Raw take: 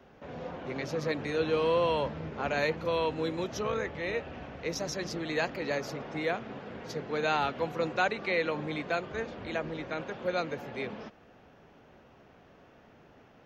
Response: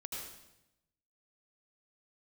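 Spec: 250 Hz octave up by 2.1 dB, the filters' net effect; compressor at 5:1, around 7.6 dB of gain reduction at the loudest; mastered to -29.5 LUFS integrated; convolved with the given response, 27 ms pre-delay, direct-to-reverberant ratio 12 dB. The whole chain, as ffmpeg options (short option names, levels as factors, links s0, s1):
-filter_complex "[0:a]equalizer=f=250:t=o:g=3,acompressor=threshold=0.0282:ratio=5,asplit=2[s0][s1];[1:a]atrim=start_sample=2205,adelay=27[s2];[s1][s2]afir=irnorm=-1:irlink=0,volume=0.282[s3];[s0][s3]amix=inputs=2:normalize=0,volume=2.11"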